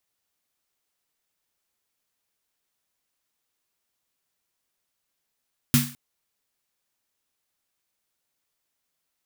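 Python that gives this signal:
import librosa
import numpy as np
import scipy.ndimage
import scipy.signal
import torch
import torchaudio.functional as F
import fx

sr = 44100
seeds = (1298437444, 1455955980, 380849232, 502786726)

y = fx.drum_snare(sr, seeds[0], length_s=0.21, hz=140.0, second_hz=240.0, noise_db=-4, noise_from_hz=1100.0, decay_s=0.34, noise_decay_s=0.4)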